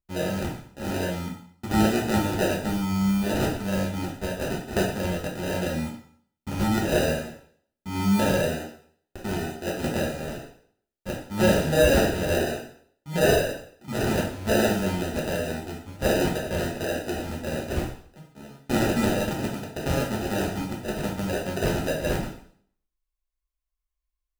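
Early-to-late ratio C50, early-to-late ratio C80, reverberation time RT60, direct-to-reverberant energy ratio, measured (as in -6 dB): 5.5 dB, 9.5 dB, 0.55 s, -3.5 dB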